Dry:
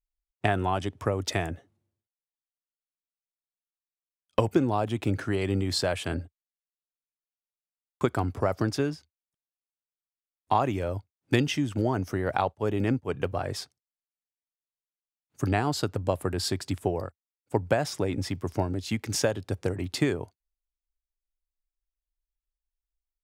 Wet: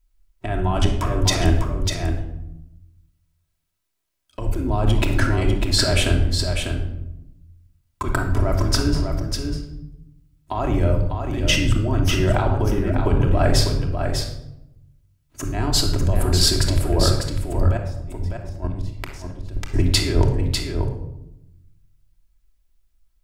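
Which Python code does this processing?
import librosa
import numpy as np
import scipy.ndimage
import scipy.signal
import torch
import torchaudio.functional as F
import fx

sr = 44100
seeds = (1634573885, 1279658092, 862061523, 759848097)

y = fx.octave_divider(x, sr, octaves=2, level_db=-5.0)
y = fx.low_shelf(y, sr, hz=150.0, db=7.5)
y = fx.over_compress(y, sr, threshold_db=-30.0, ratio=-1.0)
y = fx.gate_flip(y, sr, shuts_db=-21.0, range_db=-28, at=(17.68, 19.74))
y = y + 10.0 ** (-6.0 / 20.0) * np.pad(y, (int(598 * sr / 1000.0), 0))[:len(y)]
y = fx.room_shoebox(y, sr, seeds[0], volume_m3=2700.0, walls='furnished', distance_m=2.9)
y = F.gain(torch.from_numpy(y), 7.0).numpy()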